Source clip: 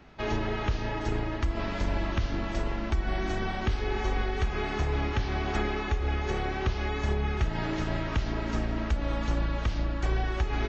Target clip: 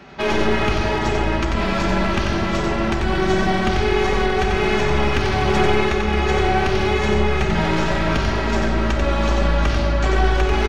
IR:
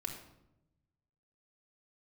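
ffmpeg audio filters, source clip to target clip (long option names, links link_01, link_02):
-filter_complex "[0:a]highpass=frequency=160:poles=1,aeval=exprs='clip(val(0),-1,0.0237)':channel_layout=same,aecho=1:1:91:0.596,asplit=2[link_01][link_02];[1:a]atrim=start_sample=2205,asetrate=23373,aresample=44100[link_03];[link_02][link_03]afir=irnorm=-1:irlink=0,volume=2dB[link_04];[link_01][link_04]amix=inputs=2:normalize=0,volume=4.5dB"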